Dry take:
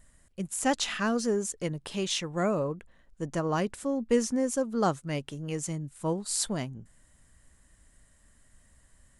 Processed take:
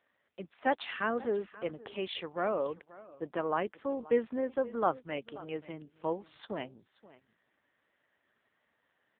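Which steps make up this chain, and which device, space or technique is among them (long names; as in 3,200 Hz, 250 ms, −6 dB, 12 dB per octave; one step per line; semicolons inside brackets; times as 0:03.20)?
satellite phone (band-pass filter 370–3,300 Hz; single-tap delay 530 ms −19 dB; AMR narrowband 5.9 kbit/s 8,000 Hz)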